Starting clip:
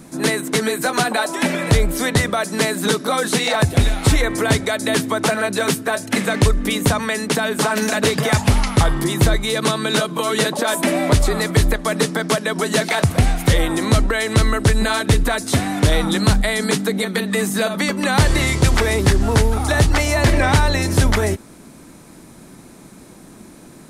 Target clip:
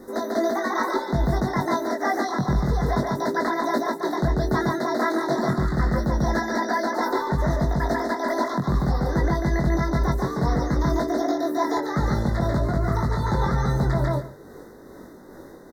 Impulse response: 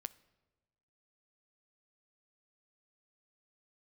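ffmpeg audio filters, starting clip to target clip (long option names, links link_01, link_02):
-filter_complex "[0:a]asuperstop=centerf=1800:order=12:qfactor=1.6,bass=frequency=250:gain=1,treble=frequency=4000:gain=-10,asplit=2[link_01][link_02];[link_02]adelay=218,lowpass=frequency=3000:poles=1,volume=-3dB,asplit=2[link_03][link_04];[link_04]adelay=218,lowpass=frequency=3000:poles=1,volume=0.15,asplit=2[link_05][link_06];[link_06]adelay=218,lowpass=frequency=3000:poles=1,volume=0.15[link_07];[link_01][link_03][link_05][link_07]amix=inputs=4:normalize=0,asplit=2[link_08][link_09];[1:a]atrim=start_sample=2205[link_10];[link_09][link_10]afir=irnorm=-1:irlink=0,volume=0.5dB[link_11];[link_08][link_11]amix=inputs=2:normalize=0,asetrate=67032,aresample=44100,acrossover=split=4000[link_12][link_13];[link_13]acompressor=threshold=-36dB:ratio=4:attack=1:release=60[link_14];[link_12][link_14]amix=inputs=2:normalize=0,tremolo=f=2.4:d=0.37,areverse,acompressor=threshold=-12dB:ratio=6,areverse,asplit=2[link_15][link_16];[link_16]adelay=21,volume=-3.5dB[link_17];[link_15][link_17]amix=inputs=2:normalize=0,volume=-8dB"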